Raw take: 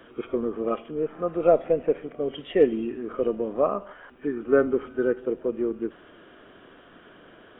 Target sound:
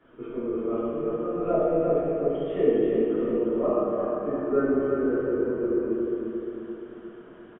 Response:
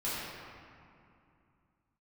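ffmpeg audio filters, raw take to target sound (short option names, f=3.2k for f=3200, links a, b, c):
-filter_complex "[0:a]highshelf=f=2k:g=-10.5,bandreject=f=520:w=15,aecho=1:1:350|700|1050|1400|1750|2100:0.562|0.253|0.114|0.0512|0.0231|0.0104[a];[1:a]atrim=start_sample=2205[b];[a][b]afir=irnorm=-1:irlink=0,volume=-7dB"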